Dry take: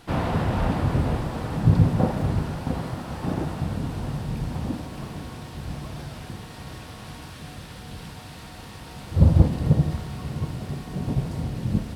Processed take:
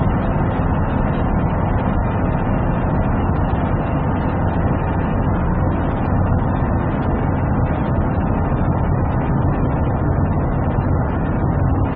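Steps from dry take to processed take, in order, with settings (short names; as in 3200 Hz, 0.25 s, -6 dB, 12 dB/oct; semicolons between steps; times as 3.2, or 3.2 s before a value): Paulstretch 37×, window 1.00 s, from 0.54; feedback echo 66 ms, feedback 43%, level -13.5 dB; spectral gate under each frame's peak -30 dB strong; gain +5.5 dB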